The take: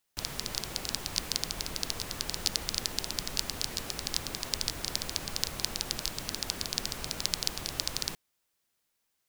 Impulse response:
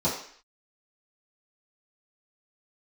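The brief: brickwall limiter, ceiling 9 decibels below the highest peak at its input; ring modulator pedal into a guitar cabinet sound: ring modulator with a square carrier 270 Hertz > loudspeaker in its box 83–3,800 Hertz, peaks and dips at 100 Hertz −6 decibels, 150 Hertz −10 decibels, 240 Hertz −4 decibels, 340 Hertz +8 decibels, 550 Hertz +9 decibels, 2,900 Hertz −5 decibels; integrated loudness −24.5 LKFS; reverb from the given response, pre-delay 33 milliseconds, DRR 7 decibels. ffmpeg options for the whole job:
-filter_complex "[0:a]alimiter=limit=-14dB:level=0:latency=1,asplit=2[link_01][link_02];[1:a]atrim=start_sample=2205,adelay=33[link_03];[link_02][link_03]afir=irnorm=-1:irlink=0,volume=-18.5dB[link_04];[link_01][link_04]amix=inputs=2:normalize=0,aeval=exprs='val(0)*sgn(sin(2*PI*270*n/s))':channel_layout=same,highpass=83,equalizer=frequency=100:width_type=q:width=4:gain=-6,equalizer=frequency=150:width_type=q:width=4:gain=-10,equalizer=frequency=240:width_type=q:width=4:gain=-4,equalizer=frequency=340:width_type=q:width=4:gain=8,equalizer=frequency=550:width_type=q:width=4:gain=9,equalizer=frequency=2900:width_type=q:width=4:gain=-5,lowpass=frequency=3800:width=0.5412,lowpass=frequency=3800:width=1.3066,volume=14dB"

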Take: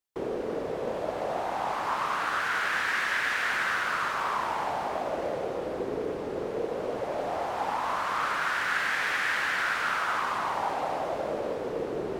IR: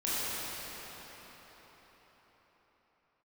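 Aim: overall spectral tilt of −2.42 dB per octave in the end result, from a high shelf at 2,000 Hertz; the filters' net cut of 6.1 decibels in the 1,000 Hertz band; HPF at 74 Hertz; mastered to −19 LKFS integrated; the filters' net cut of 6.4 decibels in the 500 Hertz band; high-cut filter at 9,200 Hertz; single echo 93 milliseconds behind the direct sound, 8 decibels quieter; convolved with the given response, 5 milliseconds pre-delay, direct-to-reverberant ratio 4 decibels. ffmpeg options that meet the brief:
-filter_complex "[0:a]highpass=74,lowpass=9200,equalizer=frequency=500:width_type=o:gain=-6,equalizer=frequency=1000:width_type=o:gain=-7.5,highshelf=frequency=2000:gain=3.5,aecho=1:1:93:0.398,asplit=2[link_01][link_02];[1:a]atrim=start_sample=2205,adelay=5[link_03];[link_02][link_03]afir=irnorm=-1:irlink=0,volume=-13.5dB[link_04];[link_01][link_04]amix=inputs=2:normalize=0,volume=10.5dB"

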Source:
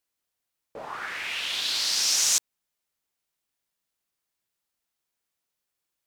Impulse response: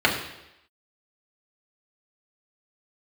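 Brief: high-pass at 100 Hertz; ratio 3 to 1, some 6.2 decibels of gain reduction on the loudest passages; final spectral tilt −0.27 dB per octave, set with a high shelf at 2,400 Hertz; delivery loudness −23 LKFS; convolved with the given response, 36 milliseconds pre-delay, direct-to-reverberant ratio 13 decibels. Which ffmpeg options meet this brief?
-filter_complex "[0:a]highpass=100,highshelf=frequency=2400:gain=-4,acompressor=threshold=-31dB:ratio=3,asplit=2[link_01][link_02];[1:a]atrim=start_sample=2205,adelay=36[link_03];[link_02][link_03]afir=irnorm=-1:irlink=0,volume=-32dB[link_04];[link_01][link_04]amix=inputs=2:normalize=0,volume=8.5dB"

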